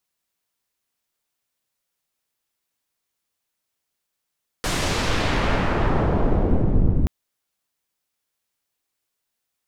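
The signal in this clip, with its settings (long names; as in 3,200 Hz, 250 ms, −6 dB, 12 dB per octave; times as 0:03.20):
filter sweep on noise pink, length 2.43 s lowpass, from 9,900 Hz, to 170 Hz, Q 0.77, exponential, gain ramp +10 dB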